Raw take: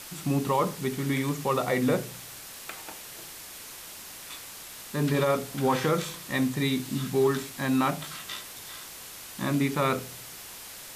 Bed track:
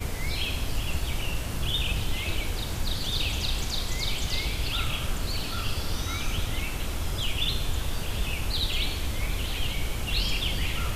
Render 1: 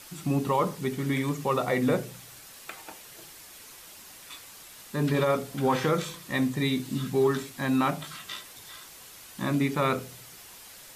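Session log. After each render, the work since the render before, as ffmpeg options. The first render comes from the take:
-af "afftdn=nr=6:nf=-44"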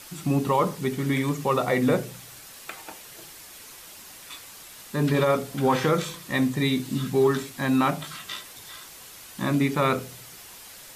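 -af "volume=3dB"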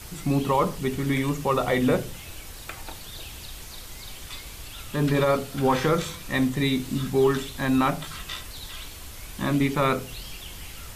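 -filter_complex "[1:a]volume=-13dB[a];[0:a][a]amix=inputs=2:normalize=0"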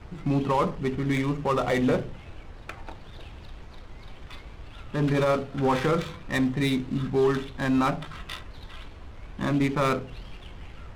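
-af "adynamicsmooth=sensitivity=5:basefreq=1.3k,asoftclip=type=tanh:threshold=-14.5dB"

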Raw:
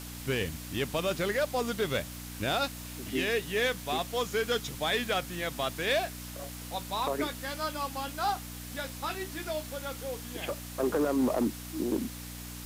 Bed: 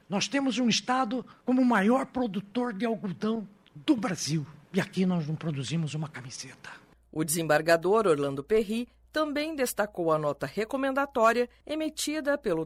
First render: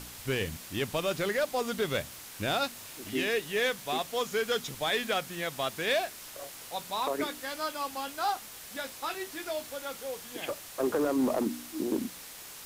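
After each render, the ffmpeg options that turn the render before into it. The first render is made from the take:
-af "bandreject=f=60:t=h:w=4,bandreject=f=120:t=h:w=4,bandreject=f=180:t=h:w=4,bandreject=f=240:t=h:w=4,bandreject=f=300:t=h:w=4"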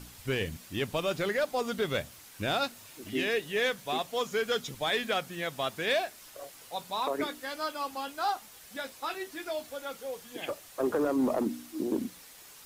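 -af "afftdn=nr=7:nf=-46"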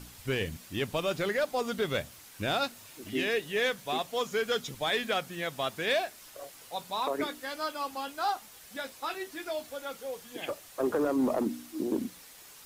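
-af anull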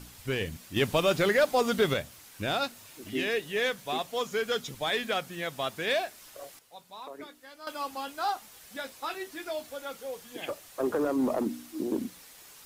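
-filter_complex "[0:a]asettb=1/sr,asplit=3[a][b][c];[a]atrim=end=0.764[d];[b]atrim=start=0.76:end=1.94,asetpts=PTS-STARTPTS,afade=t=in:d=0.004:c=qsin,afade=t=out:st=1.176:d=0.004:c=qsin,acontrast=44[e];[c]atrim=start=1.936[f];[d][e]acrossfade=d=0.004:c1=hsin:c2=qsin[g];[g][f]acrossfade=d=0.004:c1=qsin:c2=hsin,asplit=3[h][i][j];[h]atrim=end=6.592[k];[i]atrim=start=6.588:end=7.672,asetpts=PTS-STARTPTS,volume=-12dB[l];[j]atrim=start=7.668[m];[k][l]acrossfade=d=0.004:c1=hsin:c2=hsin[n];[n][m]acrossfade=d=0.004:c1=hsin:c2=hsin"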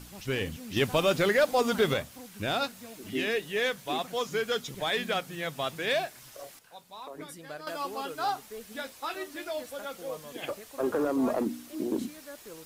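-filter_complex "[1:a]volume=-18.5dB[a];[0:a][a]amix=inputs=2:normalize=0"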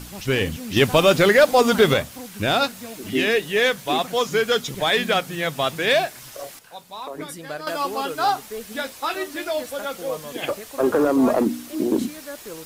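-af "volume=9.5dB"

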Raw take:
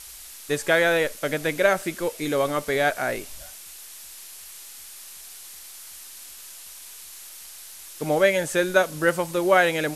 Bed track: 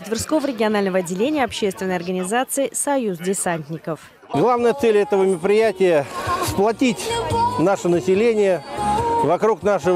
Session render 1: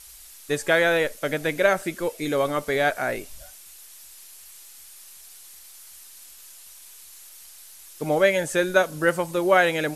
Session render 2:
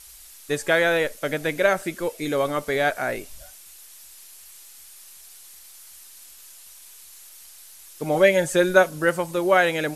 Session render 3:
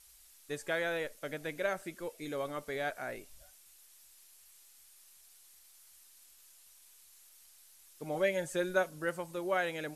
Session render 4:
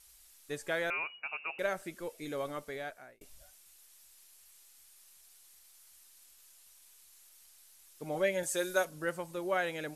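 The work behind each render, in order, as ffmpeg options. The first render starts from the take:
-af "afftdn=nr=6:nf=-43"
-filter_complex "[0:a]asettb=1/sr,asplit=3[a][b][c];[a]atrim=end=8.144[d];[b]atrim=start=8.14:end=8.89,asetpts=PTS-STARTPTS,afade=t=in:d=0.004:c=qsin,afade=t=out:st=0.746:d=0.004:c=qsin,aecho=1:1:5.5:0.65,atrim=end_sample=33075[e];[c]atrim=start=8.886[f];[d][e]acrossfade=d=0.004:c1=hsin:c2=qsin[g];[g][f]acrossfade=d=0.004:c1=qsin:c2=hsin"
-af "volume=-14dB"
-filter_complex "[0:a]asettb=1/sr,asplit=3[a][b][c];[a]atrim=end=0.904[d];[b]atrim=start=0.9:end=1.59,asetpts=PTS-STARTPTS,afade=t=in:d=0.004:c=qsin,afade=t=out:st=0.686:d=0.004:c=qsin,lowpass=f=2.5k:t=q:w=0.5098,lowpass=f=2.5k:t=q:w=0.6013,lowpass=f=2.5k:t=q:w=0.9,lowpass=f=2.5k:t=q:w=2.563,afreqshift=-2900[e];[c]atrim=start=1.586[f];[d][e]acrossfade=d=0.004:c1=hsin:c2=qsin[g];[g][f]acrossfade=d=0.004:c1=qsin:c2=hsin,asettb=1/sr,asplit=3[h][i][j];[h]atrim=end=8.434[k];[i]atrim=start=8.43:end=8.85,asetpts=PTS-STARTPTS,afade=t=in:d=0.004:c=qsin,afade=t=out:st=0.416:d=0.004:c=qsin,bass=f=250:g=-9,treble=f=4k:g=10[l];[j]atrim=start=8.846[m];[k][l]acrossfade=d=0.004:c1=hsin:c2=qsin[n];[n][m]acrossfade=d=0.004:c1=qsin:c2=hsin,asplit=2[o][p];[o]atrim=end=3.21,asetpts=PTS-STARTPTS,afade=t=out:st=2.52:d=0.69[q];[p]atrim=start=3.21,asetpts=PTS-STARTPTS,afade=t=in:d=0.004:c=hsin[r];[q][r]concat=n=2:v=0:a=1"

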